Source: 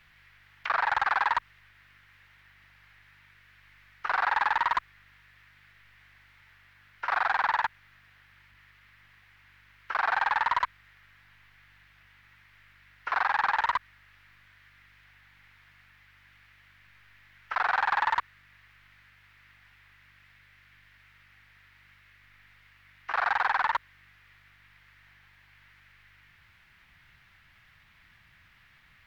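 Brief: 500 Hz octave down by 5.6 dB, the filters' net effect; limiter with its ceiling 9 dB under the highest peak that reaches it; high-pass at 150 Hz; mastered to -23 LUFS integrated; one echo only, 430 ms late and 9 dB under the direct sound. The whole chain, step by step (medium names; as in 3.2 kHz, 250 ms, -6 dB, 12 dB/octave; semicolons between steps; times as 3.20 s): high-pass 150 Hz; peaking EQ 500 Hz -9 dB; peak limiter -25 dBFS; delay 430 ms -9 dB; trim +13 dB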